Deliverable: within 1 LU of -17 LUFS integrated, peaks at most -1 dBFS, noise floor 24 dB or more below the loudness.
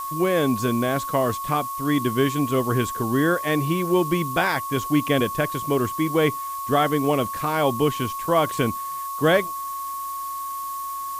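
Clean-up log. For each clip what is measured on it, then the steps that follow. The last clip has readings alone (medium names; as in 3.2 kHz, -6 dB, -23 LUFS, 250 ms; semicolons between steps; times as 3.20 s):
steady tone 1.1 kHz; tone level -28 dBFS; noise floor -31 dBFS; noise floor target -47 dBFS; loudness -23.0 LUFS; peak level -7.5 dBFS; loudness target -17.0 LUFS
-> band-stop 1.1 kHz, Q 30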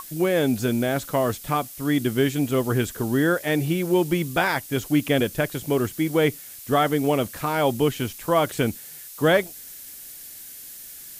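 steady tone not found; noise floor -41 dBFS; noise floor target -47 dBFS
-> noise reduction 6 dB, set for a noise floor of -41 dBFS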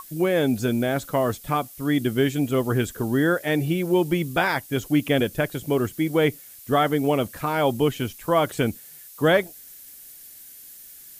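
noise floor -45 dBFS; noise floor target -48 dBFS
-> noise reduction 6 dB, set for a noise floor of -45 dBFS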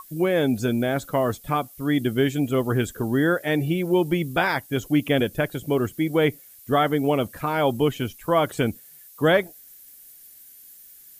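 noise floor -48 dBFS; loudness -23.5 LUFS; peak level -8.5 dBFS; loudness target -17.0 LUFS
-> trim +6.5 dB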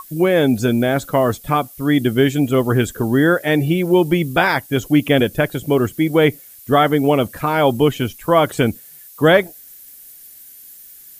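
loudness -17.0 LUFS; peak level -2.0 dBFS; noise floor -42 dBFS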